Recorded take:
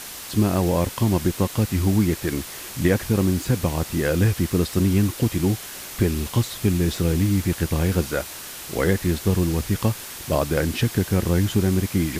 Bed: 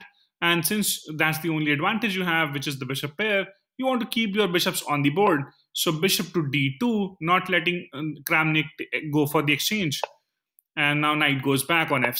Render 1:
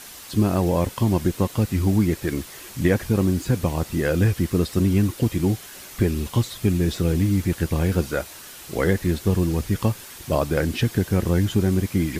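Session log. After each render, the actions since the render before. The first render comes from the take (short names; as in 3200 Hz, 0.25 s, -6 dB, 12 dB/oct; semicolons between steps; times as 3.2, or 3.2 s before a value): denoiser 6 dB, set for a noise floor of -37 dBFS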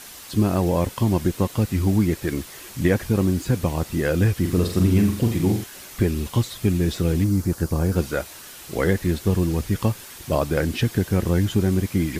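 4.4–5.64 flutter echo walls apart 7.5 m, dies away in 0.45 s; 7.24–7.96 band shelf 2600 Hz -9.5 dB 1.3 oct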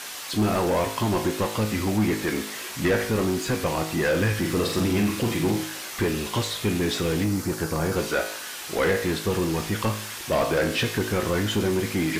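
resonator 53 Hz, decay 0.58 s, harmonics all, mix 70%; overdrive pedal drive 21 dB, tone 5000 Hz, clips at -13 dBFS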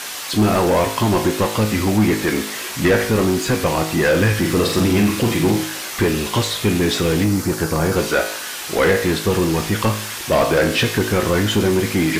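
gain +7 dB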